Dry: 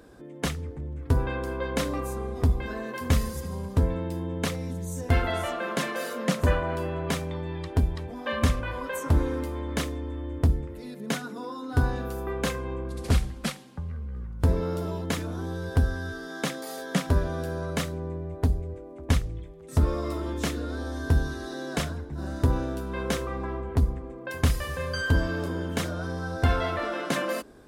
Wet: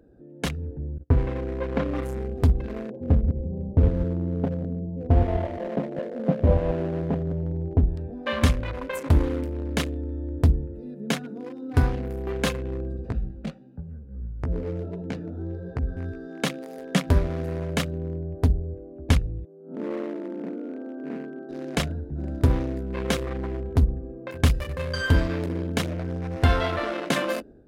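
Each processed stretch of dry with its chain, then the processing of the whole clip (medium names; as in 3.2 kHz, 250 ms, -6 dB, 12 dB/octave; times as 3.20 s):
0.98–1.96 s: gate -35 dBFS, range -32 dB + low-pass 1.5 kHz
2.90–7.87 s: chunks repeated in reverse 103 ms, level -6 dB + steep low-pass 850 Hz
12.97–15.97 s: distance through air 97 m + compression 5:1, threshold -22 dBFS + chorus 1.4 Hz, delay 15.5 ms, depth 5.8 ms
19.45–21.49 s: spectral blur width 128 ms + brick-wall FIR band-pass 170–1600 Hz + delay 251 ms -16.5 dB
whole clip: local Wiener filter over 41 samples; dynamic bell 3 kHz, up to +4 dB, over -48 dBFS, Q 0.99; level rider gain up to 5.5 dB; trim -2 dB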